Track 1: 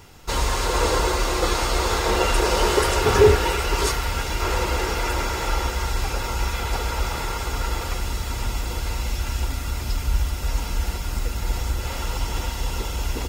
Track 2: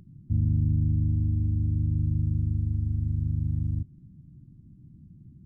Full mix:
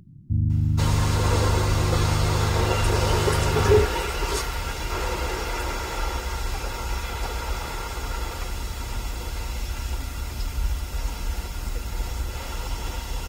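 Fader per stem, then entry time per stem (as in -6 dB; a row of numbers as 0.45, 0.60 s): -4.0, +2.0 dB; 0.50, 0.00 s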